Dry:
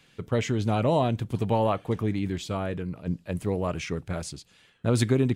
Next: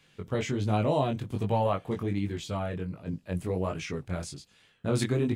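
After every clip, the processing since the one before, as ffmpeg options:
ffmpeg -i in.wav -af "flanger=delay=19:depth=3.6:speed=1.3" out.wav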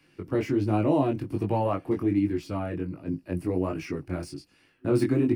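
ffmpeg -i in.wav -filter_complex "[0:a]acrossover=split=240|440|1800[link_01][link_02][link_03][link_04];[link_04]asoftclip=type=tanh:threshold=-37dB[link_05];[link_01][link_02][link_03][link_05]amix=inputs=4:normalize=0,superequalizer=6b=3.55:13b=0.355:15b=0.398" out.wav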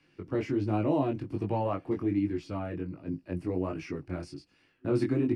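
ffmpeg -i in.wav -af "lowpass=6600,volume=-4dB" out.wav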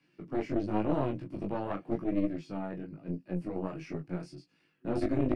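ffmpeg -i in.wav -af "lowshelf=frequency=110:width_type=q:width=3:gain=-10,flanger=delay=16:depth=5:speed=0.93,aeval=exprs='0.158*(cos(1*acos(clip(val(0)/0.158,-1,1)))-cos(1*PI/2))+0.0501*(cos(4*acos(clip(val(0)/0.158,-1,1)))-cos(4*PI/2))+0.0158*(cos(6*acos(clip(val(0)/0.158,-1,1)))-cos(6*PI/2))+0.00631*(cos(8*acos(clip(val(0)/0.158,-1,1)))-cos(8*PI/2))':channel_layout=same,volume=-2dB" out.wav

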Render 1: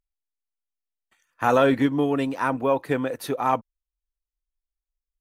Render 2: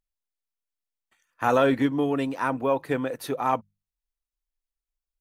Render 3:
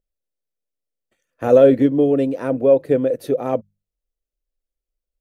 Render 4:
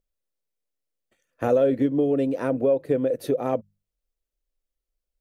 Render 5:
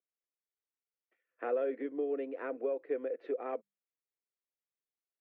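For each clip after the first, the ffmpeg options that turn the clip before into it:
ffmpeg -i in.wav -af "bandreject=frequency=50:width_type=h:width=6,bandreject=frequency=100:width_type=h:width=6,bandreject=frequency=150:width_type=h:width=6,bandreject=frequency=200:width_type=h:width=6,volume=-2dB" out.wav
ffmpeg -i in.wav -af "lowshelf=frequency=720:width_type=q:width=3:gain=9,volume=-3dB" out.wav
ffmpeg -i in.wav -af "acompressor=threshold=-21dB:ratio=2.5" out.wav
ffmpeg -i in.wav -af "highpass=frequency=370:width=0.5412,highpass=frequency=370:width=1.3066,equalizer=frequency=580:width_type=q:width=4:gain=-8,equalizer=frequency=890:width_type=q:width=4:gain=-6,equalizer=frequency=2100:width_type=q:width=4:gain=3,lowpass=frequency=2400:width=0.5412,lowpass=frequency=2400:width=1.3066,volume=-7.5dB" out.wav

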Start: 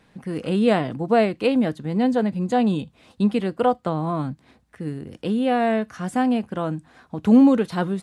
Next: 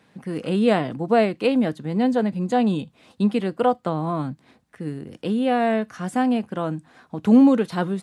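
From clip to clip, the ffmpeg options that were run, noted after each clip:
ffmpeg -i in.wav -af "highpass=110" out.wav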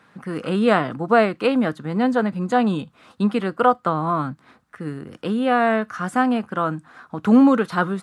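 ffmpeg -i in.wav -af "equalizer=frequency=1300:width=1.8:gain=12.5" out.wav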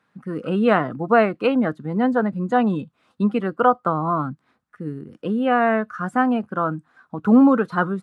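ffmpeg -i in.wav -af "afftdn=noise_reduction=13:noise_floor=-30" out.wav

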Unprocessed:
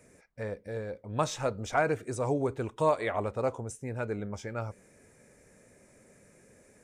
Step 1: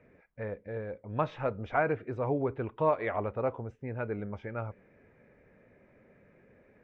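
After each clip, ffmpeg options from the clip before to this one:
ffmpeg -i in.wav -af "lowpass=frequency=2700:width=0.5412,lowpass=frequency=2700:width=1.3066,volume=-1dB" out.wav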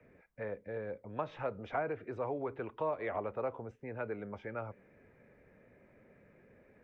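ffmpeg -i in.wav -filter_complex "[0:a]acrossover=split=120|750[link_01][link_02][link_03];[link_01]acompressor=threshold=-55dB:ratio=4[link_04];[link_02]acompressor=threshold=-32dB:ratio=4[link_05];[link_03]acompressor=threshold=-38dB:ratio=4[link_06];[link_04][link_05][link_06]amix=inputs=3:normalize=0,acrossover=split=320|750[link_07][link_08][link_09];[link_07]alimiter=level_in=17dB:limit=-24dB:level=0:latency=1,volume=-17dB[link_10];[link_10][link_08][link_09]amix=inputs=3:normalize=0,volume=-1.5dB" out.wav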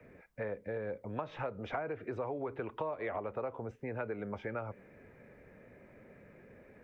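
ffmpeg -i in.wav -af "acompressor=threshold=-40dB:ratio=5,volume=5.5dB" out.wav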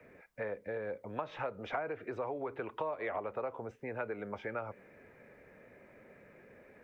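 ffmpeg -i in.wav -af "lowshelf=frequency=270:gain=-9,volume=2dB" out.wav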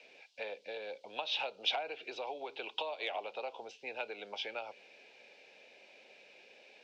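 ffmpeg -i in.wav -af "highpass=440,equalizer=frequency=790:width_type=q:width=4:gain=7,equalizer=frequency=1200:width_type=q:width=4:gain=-9,equalizer=frequency=2700:width_type=q:width=4:gain=5,lowpass=frequency=4400:width=0.5412,lowpass=frequency=4400:width=1.3066,aexciter=amount=14.4:drive=8.6:freq=3000,volume=-3dB" out.wav

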